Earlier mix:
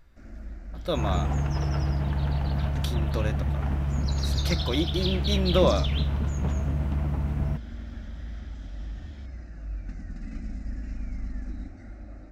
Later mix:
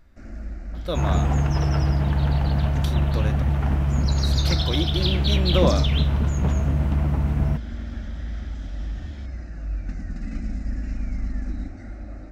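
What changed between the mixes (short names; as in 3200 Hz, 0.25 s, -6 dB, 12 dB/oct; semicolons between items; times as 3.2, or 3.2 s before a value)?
first sound +7.5 dB; second sound +5.5 dB; reverb: off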